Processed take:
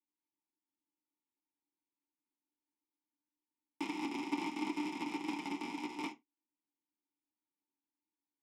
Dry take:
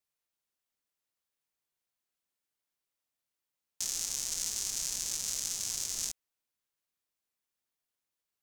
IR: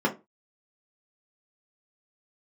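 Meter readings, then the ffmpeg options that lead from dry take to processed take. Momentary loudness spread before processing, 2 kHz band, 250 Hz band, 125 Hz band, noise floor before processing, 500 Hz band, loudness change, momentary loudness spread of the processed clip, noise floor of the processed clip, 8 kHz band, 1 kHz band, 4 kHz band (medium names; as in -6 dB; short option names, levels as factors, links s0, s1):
4 LU, +5.5 dB, +21.5 dB, -1.5 dB, under -85 dBFS, +10.5 dB, -7.0 dB, 6 LU, under -85 dBFS, -27.5 dB, +15.0 dB, -11.5 dB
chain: -filter_complex "[0:a]aeval=exprs='0.178*(cos(1*acos(clip(val(0)/0.178,-1,1)))-cos(1*PI/2))+0.0631*(cos(3*acos(clip(val(0)/0.178,-1,1)))-cos(3*PI/2))+0.00562*(cos(5*acos(clip(val(0)/0.178,-1,1)))-cos(5*PI/2))':c=same,asplit=3[s0][s1][s2];[s0]bandpass=f=300:t=q:w=8,volume=1[s3];[s1]bandpass=f=870:t=q:w=8,volume=0.501[s4];[s2]bandpass=f=2240:t=q:w=8,volume=0.355[s5];[s3][s4][s5]amix=inputs=3:normalize=0[s6];[1:a]atrim=start_sample=2205,afade=t=out:st=0.16:d=0.01,atrim=end_sample=7497[s7];[s6][s7]afir=irnorm=-1:irlink=0,volume=5.31"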